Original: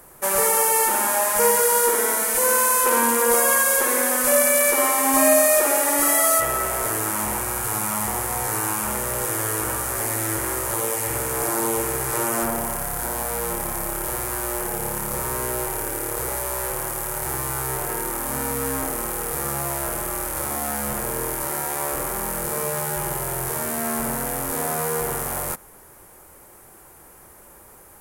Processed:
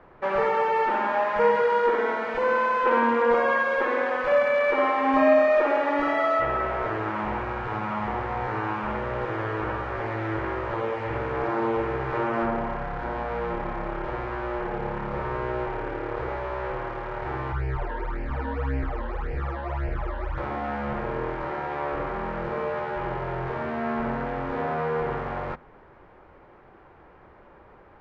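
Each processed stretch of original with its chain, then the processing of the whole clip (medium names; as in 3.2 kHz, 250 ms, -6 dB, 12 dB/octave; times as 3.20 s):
17.52–20.38 s: resonant low shelf 120 Hz +8 dB, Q 1.5 + phase shifter stages 12, 1.8 Hz, lowest notch 120–1200 Hz
whole clip: Bessel low-pass 2.1 kHz, order 6; hum notches 50/100/150/200/250 Hz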